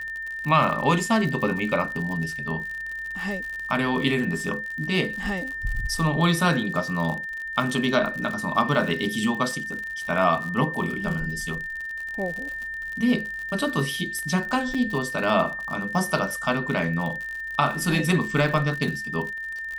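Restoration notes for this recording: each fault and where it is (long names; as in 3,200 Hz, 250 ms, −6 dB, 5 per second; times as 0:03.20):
surface crackle 67 per second −30 dBFS
whistle 1,800 Hz −30 dBFS
0:14.74–0:14.75: drop-out 5.5 ms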